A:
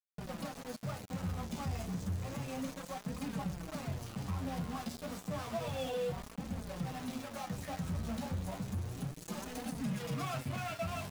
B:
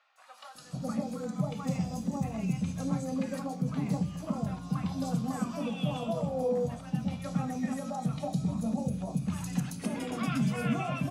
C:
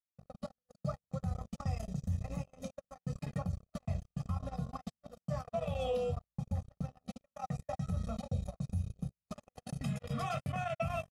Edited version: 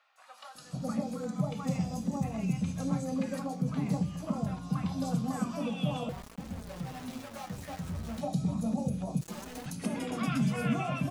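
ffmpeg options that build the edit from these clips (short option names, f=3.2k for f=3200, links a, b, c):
-filter_complex "[0:a]asplit=2[a][b];[1:a]asplit=3[c][d][e];[c]atrim=end=6.092[f];[a]atrim=start=6.088:end=8.212[g];[d]atrim=start=8.208:end=9.212[h];[b]atrim=start=9.208:end=9.662[i];[e]atrim=start=9.658[j];[f][g]acrossfade=d=0.004:c1=hsin:c2=hsin[k];[k][h]acrossfade=d=0.004:c1=hsin:c2=hsin[l];[l][i]acrossfade=d=0.004:c1=hsin:c2=hsin[m];[m][j]acrossfade=d=0.004:c1=hsin:c2=hsin"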